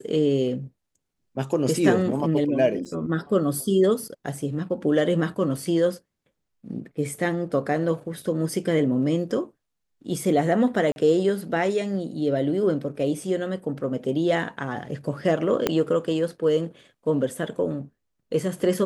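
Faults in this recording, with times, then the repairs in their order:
2.85–2.86 s: dropout 6.7 ms
10.92–10.96 s: dropout 41 ms
15.67 s: pop -7 dBFS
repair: de-click; interpolate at 2.85 s, 6.7 ms; interpolate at 10.92 s, 41 ms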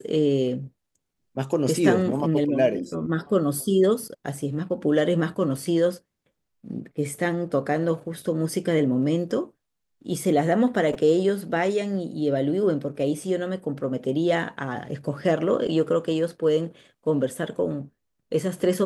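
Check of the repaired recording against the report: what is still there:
15.67 s: pop

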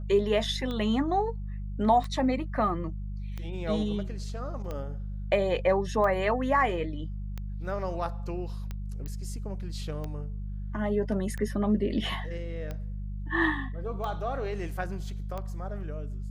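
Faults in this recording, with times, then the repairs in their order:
hum 50 Hz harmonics 4 -35 dBFS
tick 45 rpm -23 dBFS
9.06 s: pop -24 dBFS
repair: de-click; de-hum 50 Hz, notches 4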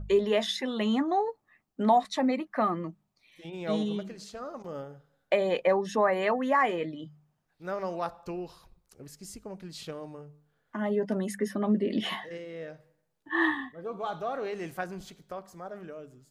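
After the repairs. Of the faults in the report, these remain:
nothing left

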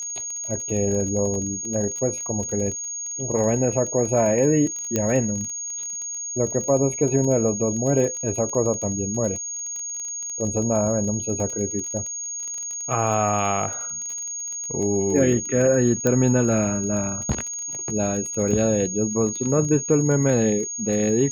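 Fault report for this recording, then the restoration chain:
crackle 22 per s -28 dBFS
whine 6.6 kHz -28 dBFS
4.96 s: pop -8 dBFS
16.07 s: pop -8 dBFS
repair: de-click; band-stop 6.6 kHz, Q 30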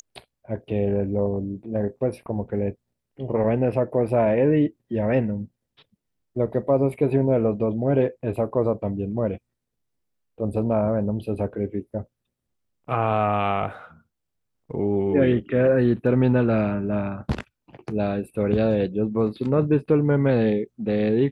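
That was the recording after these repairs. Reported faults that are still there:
4.96 s: pop
16.07 s: pop

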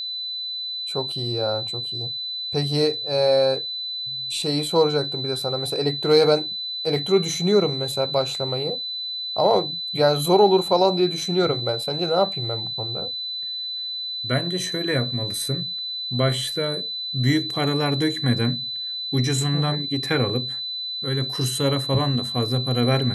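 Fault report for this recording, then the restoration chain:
whine 4 kHz -27 dBFS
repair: band-stop 4 kHz, Q 30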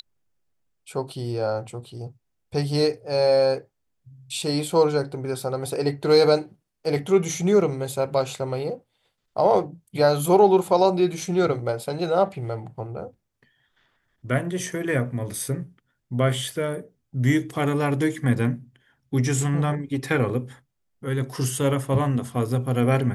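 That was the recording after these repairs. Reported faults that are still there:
nothing left

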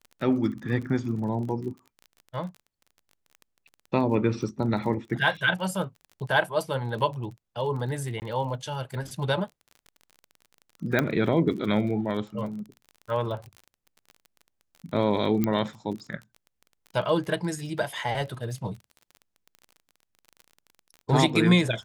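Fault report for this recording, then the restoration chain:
crackle 31 per s -36 dBFS
8.20–8.22 s: dropout 19 ms
10.99 s: pop -10 dBFS
15.44 s: pop -12 dBFS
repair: de-click; interpolate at 8.20 s, 19 ms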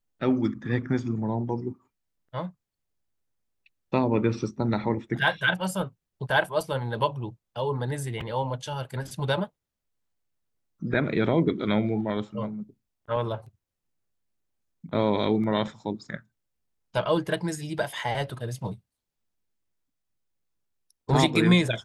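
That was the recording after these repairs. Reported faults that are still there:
15.44 s: pop

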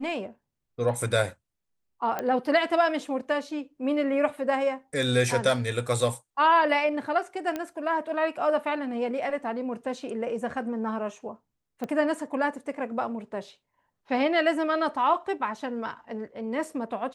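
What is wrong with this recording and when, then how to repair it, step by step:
2.19 s: pop -16 dBFS
7.56 s: pop -17 dBFS
11.84 s: pop -20 dBFS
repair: de-click

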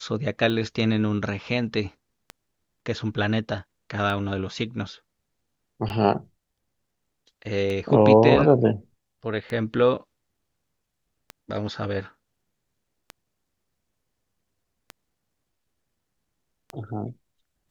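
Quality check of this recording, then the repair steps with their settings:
tick 33 1/3 rpm -18 dBFS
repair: de-click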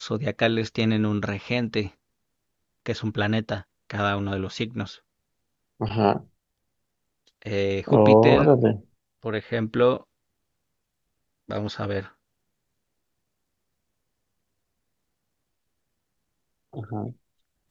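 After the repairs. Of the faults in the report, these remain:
nothing left

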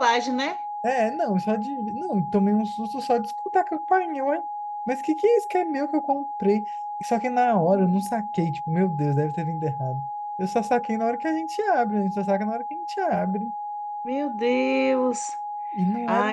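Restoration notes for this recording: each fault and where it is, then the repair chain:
whine 830 Hz -29 dBFS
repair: band-stop 830 Hz, Q 30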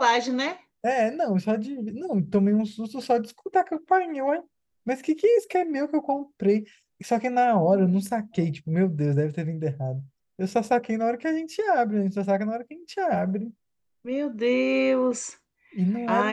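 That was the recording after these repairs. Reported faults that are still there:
nothing left

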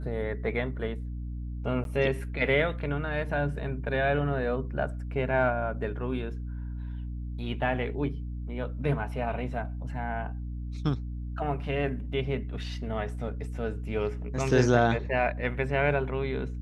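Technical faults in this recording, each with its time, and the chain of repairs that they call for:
hum 60 Hz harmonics 5 -35 dBFS
1.84–1.85 s: dropout 12 ms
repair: de-hum 60 Hz, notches 5; interpolate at 1.84 s, 12 ms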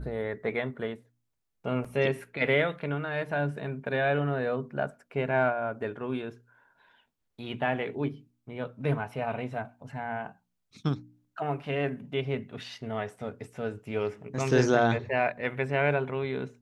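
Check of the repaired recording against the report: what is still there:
nothing left

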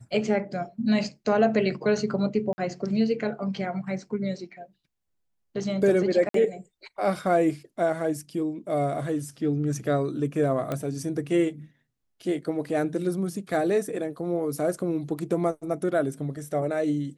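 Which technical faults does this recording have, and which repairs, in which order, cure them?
2.53–2.58 s: dropout 50 ms
6.29–6.34 s: dropout 53 ms
10.72 s: pop -16 dBFS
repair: de-click; interpolate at 2.53 s, 50 ms; interpolate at 6.29 s, 53 ms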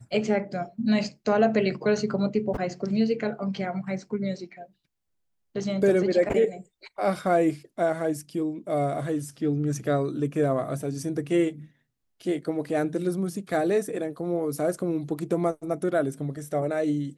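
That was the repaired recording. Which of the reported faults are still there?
nothing left

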